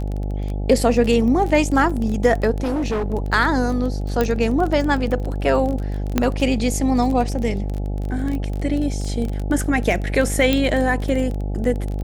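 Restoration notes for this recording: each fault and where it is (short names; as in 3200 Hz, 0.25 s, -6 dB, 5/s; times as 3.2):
buzz 50 Hz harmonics 17 -24 dBFS
crackle 19/s -24 dBFS
2.63–3.14 clipped -18.5 dBFS
4.21 pop -7 dBFS
6.18 pop -4 dBFS
10.53 pop -5 dBFS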